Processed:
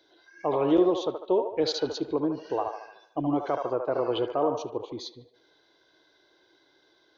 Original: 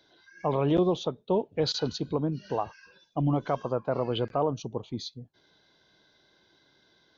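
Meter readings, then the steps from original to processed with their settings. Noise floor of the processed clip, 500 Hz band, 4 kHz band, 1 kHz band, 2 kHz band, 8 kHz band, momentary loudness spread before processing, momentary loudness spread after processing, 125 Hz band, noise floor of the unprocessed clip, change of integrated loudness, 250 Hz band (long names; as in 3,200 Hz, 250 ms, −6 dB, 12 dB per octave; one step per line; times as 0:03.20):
−65 dBFS, +2.5 dB, −1.0 dB, +1.5 dB, +0.5 dB, can't be measured, 12 LU, 13 LU, −10.0 dB, −66 dBFS, +1.5 dB, +2.0 dB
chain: low shelf with overshoot 260 Hz −6.5 dB, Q 3
delay with a band-pass on its return 74 ms, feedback 49%, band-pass 1,000 Hz, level −4 dB
level −1 dB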